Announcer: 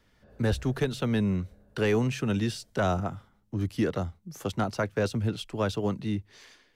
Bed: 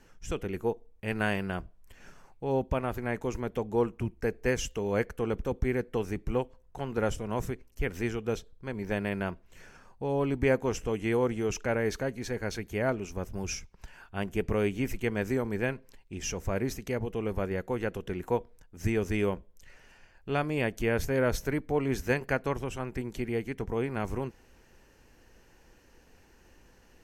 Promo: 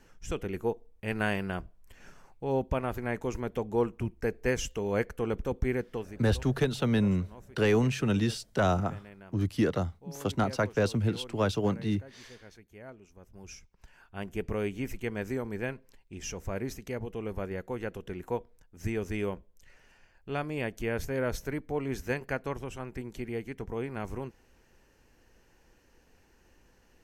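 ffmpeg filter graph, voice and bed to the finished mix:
-filter_complex "[0:a]adelay=5800,volume=0.5dB[a];[1:a]volume=14dB,afade=t=out:st=5.73:d=0.51:silence=0.125893,afade=t=in:st=13.2:d=1.18:silence=0.188365[b];[a][b]amix=inputs=2:normalize=0"

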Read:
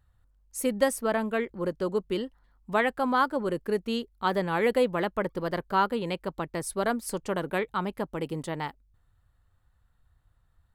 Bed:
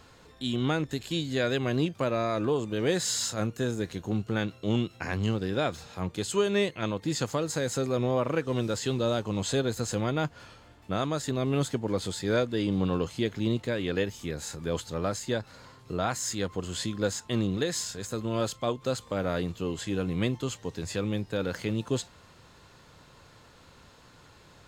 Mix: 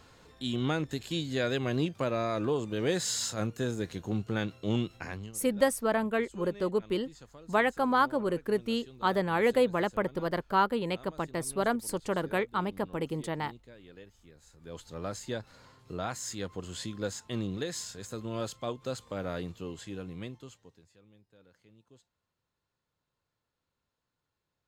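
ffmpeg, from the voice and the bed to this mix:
-filter_complex "[0:a]adelay=4800,volume=-1dB[a];[1:a]volume=14dB,afade=t=out:st=4.91:d=0.41:silence=0.1,afade=t=in:st=14.52:d=0.62:silence=0.149624,afade=t=out:st=19.33:d=1.56:silence=0.0562341[b];[a][b]amix=inputs=2:normalize=0"

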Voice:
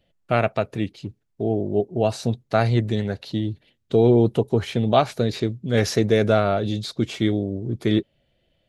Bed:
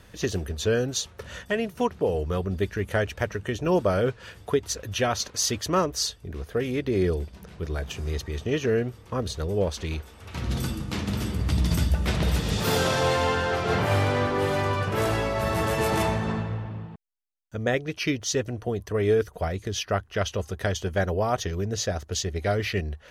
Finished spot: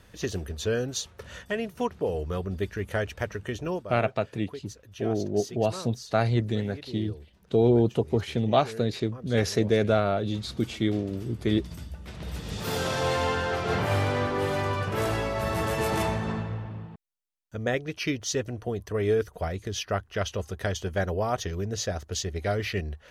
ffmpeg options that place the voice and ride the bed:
-filter_complex "[0:a]adelay=3600,volume=-4.5dB[a];[1:a]volume=10.5dB,afade=t=out:st=3.59:d=0.25:silence=0.223872,afade=t=in:st=12.12:d=1.06:silence=0.199526[b];[a][b]amix=inputs=2:normalize=0"

